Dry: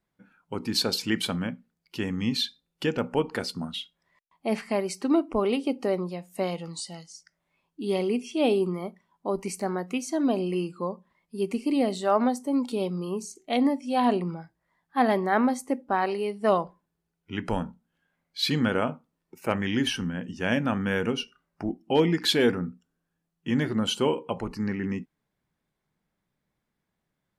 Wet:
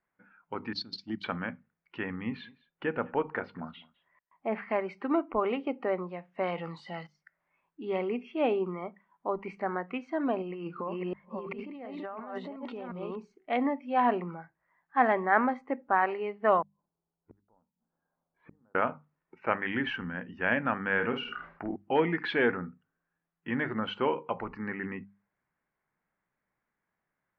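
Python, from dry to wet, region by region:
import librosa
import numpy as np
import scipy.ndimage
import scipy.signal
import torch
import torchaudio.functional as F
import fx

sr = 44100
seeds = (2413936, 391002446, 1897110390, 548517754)

y = fx.chain(x, sr, fx.curve_eq(hz=(310.0, 470.0, 2500.0, 4400.0, 8400.0), db=(0, -25, -20, 12, 3)),
    fx.transient(attack_db=2, sustain_db=-10), at=(0.73, 1.24))
y = fx.chain(y, sr, fx.high_shelf(hz=2700.0, db=-9.5),
    fx.echo_single(ms=207, db=-23.0), at=(2.16, 4.62))
y = fx.chain(y, sr, fx.block_float(bits=7),
    fx.high_shelf(hz=5900.0, db=11.5),
    fx.env_flatten(amount_pct=50), at=(6.43, 7.07))
y = fx.chain(y, sr, fx.reverse_delay(ms=357, wet_db=-4.5),
    fx.over_compress(threshold_db=-33.0, ratio=-1.0), at=(10.42, 13.18))
y = fx.chain(y, sr, fx.lowpass(hz=1000.0, slope=24),
    fx.gate_flip(shuts_db=-33.0, range_db=-37), at=(16.62, 18.75))
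y = fx.chain(y, sr, fx.high_shelf(hz=7700.0, db=6.5),
    fx.doubler(ms=49.0, db=-9.5),
    fx.sustainer(db_per_s=75.0), at=(20.93, 21.76))
y = scipy.signal.sosfilt(scipy.signal.butter(4, 2000.0, 'lowpass', fs=sr, output='sos'), y)
y = fx.tilt_shelf(y, sr, db=-7.5, hz=680.0)
y = fx.hum_notches(y, sr, base_hz=50, count=4)
y = F.gain(torch.from_numpy(y), -1.5).numpy()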